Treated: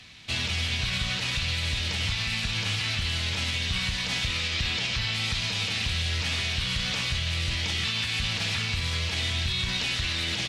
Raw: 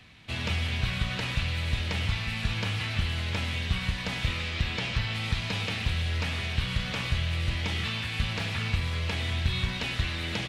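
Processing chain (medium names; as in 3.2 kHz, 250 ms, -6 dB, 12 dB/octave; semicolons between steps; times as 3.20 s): peaking EQ 5.8 kHz +12.5 dB 2 oct; peak limiter -18.5 dBFS, peak gain reduction 10 dB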